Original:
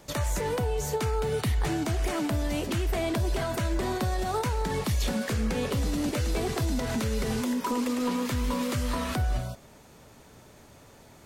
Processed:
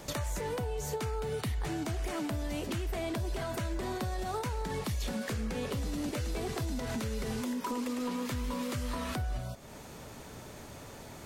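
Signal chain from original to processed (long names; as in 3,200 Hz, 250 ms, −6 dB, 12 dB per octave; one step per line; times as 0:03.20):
downward compressor 2.5 to 1, threshold −44 dBFS, peak gain reduction 13.5 dB
level +5.5 dB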